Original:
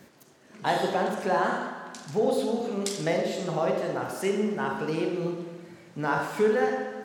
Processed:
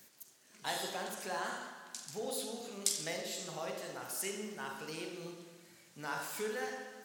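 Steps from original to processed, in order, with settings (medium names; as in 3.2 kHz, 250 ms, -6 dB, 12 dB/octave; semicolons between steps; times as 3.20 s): pre-emphasis filter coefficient 0.9; short-mantissa float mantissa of 6-bit; trim +2.5 dB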